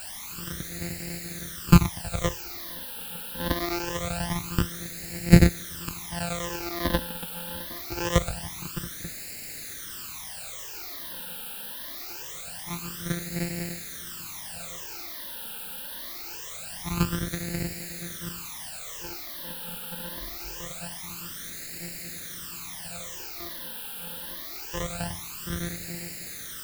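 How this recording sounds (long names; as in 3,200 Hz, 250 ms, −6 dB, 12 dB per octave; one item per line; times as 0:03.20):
a buzz of ramps at a fixed pitch in blocks of 256 samples
chopped level 10 Hz, duty 90%
a quantiser's noise floor 6 bits, dither triangular
phaser sweep stages 12, 0.24 Hz, lowest notch 110–1,100 Hz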